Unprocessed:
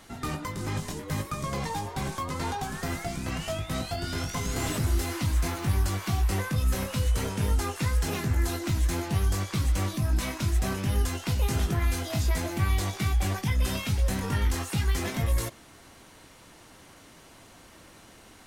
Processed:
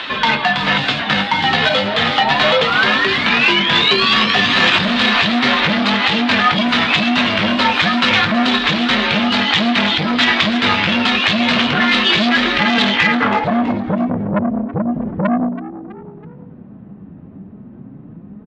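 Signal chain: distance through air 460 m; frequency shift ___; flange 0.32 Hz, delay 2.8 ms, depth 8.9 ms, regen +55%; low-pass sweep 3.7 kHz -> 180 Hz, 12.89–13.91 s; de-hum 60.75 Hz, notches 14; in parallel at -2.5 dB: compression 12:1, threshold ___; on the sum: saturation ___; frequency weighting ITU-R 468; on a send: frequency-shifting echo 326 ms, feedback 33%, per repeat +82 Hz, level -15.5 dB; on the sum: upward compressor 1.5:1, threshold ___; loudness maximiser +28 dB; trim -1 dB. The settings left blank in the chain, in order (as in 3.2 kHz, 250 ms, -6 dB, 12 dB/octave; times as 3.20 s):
-300 Hz, -40 dBFS, -28 dBFS, -49 dBFS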